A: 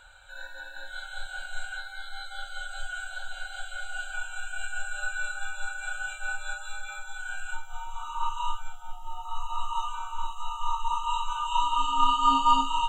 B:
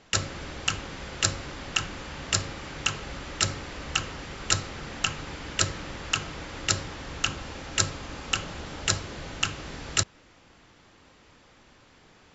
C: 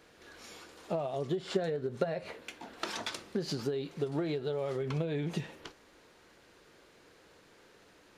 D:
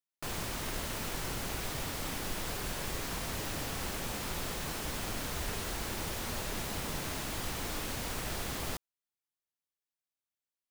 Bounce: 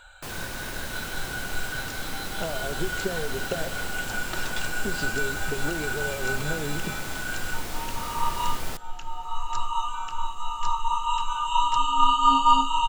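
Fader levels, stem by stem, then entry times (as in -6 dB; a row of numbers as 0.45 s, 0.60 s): +3.0 dB, -18.5 dB, +0.5 dB, +1.5 dB; 0.00 s, 1.75 s, 1.50 s, 0.00 s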